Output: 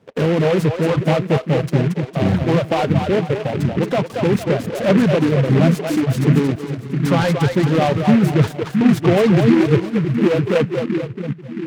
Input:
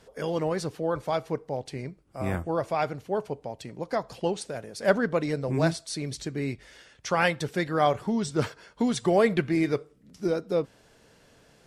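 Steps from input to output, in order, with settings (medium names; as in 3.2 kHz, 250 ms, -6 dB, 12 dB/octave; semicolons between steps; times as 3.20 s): in parallel at -5.5 dB: fuzz box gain 40 dB, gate -47 dBFS; on the sum: high-pass 120 Hz 24 dB/octave; tilt EQ -4 dB/octave; on a send: two-band feedback delay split 330 Hz, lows 670 ms, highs 228 ms, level -3.5 dB; on the sum: reverb removal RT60 1.5 s; delay time shaken by noise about 1.7 kHz, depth 0.063 ms; trim -3 dB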